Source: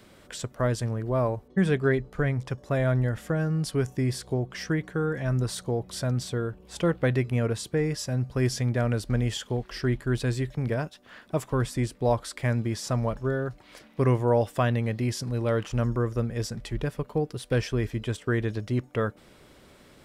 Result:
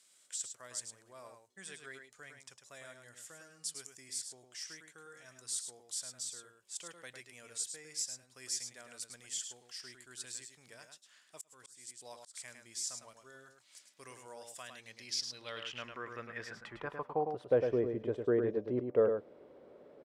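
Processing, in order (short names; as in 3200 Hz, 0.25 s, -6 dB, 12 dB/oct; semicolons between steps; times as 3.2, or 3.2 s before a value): band-pass sweep 7700 Hz -> 490 Hz, 14.65–17.76; outdoor echo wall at 18 m, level -6 dB; 11.38–12.34 auto swell 0.358 s; gain +3 dB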